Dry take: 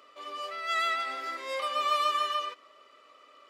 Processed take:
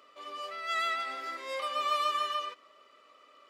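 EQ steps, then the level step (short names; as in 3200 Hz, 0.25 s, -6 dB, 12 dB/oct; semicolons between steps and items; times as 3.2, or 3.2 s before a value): bell 190 Hz +6 dB 0.36 oct; -2.5 dB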